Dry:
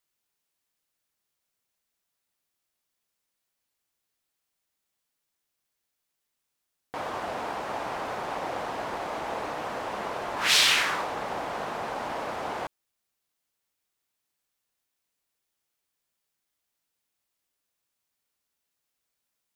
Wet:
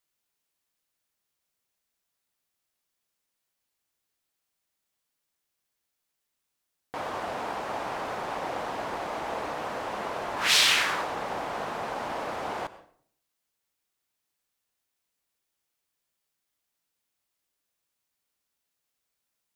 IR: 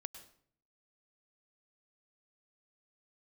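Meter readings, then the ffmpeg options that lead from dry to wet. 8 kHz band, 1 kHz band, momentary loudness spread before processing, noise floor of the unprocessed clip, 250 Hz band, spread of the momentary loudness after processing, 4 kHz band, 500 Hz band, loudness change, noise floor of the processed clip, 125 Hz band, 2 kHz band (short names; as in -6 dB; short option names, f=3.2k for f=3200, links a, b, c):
0.0 dB, 0.0 dB, 13 LU, -82 dBFS, 0.0 dB, 13 LU, -0.5 dB, 0.0 dB, 0.0 dB, -82 dBFS, 0.0 dB, 0.0 dB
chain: -filter_complex "[0:a]asplit=2[a][b];[1:a]atrim=start_sample=2205[c];[b][c]afir=irnorm=-1:irlink=0,volume=2.5dB[d];[a][d]amix=inputs=2:normalize=0,volume=-5.5dB"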